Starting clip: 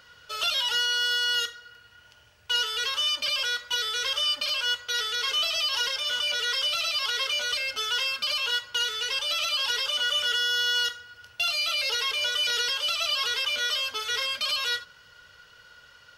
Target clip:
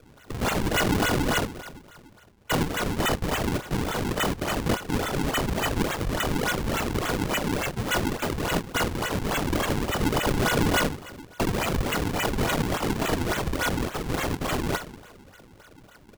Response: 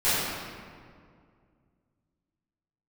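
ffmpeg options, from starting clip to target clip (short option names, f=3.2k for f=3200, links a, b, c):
-filter_complex "[0:a]aresample=11025,aresample=44100,asplit=2[a][b];[1:a]atrim=start_sample=2205,highshelf=f=6.2k:g=10[c];[b][c]afir=irnorm=-1:irlink=0,volume=-26.5dB[d];[a][d]amix=inputs=2:normalize=0,acrusher=samples=42:mix=1:aa=0.000001:lfo=1:lforange=67.2:lforate=3.5,volume=1dB"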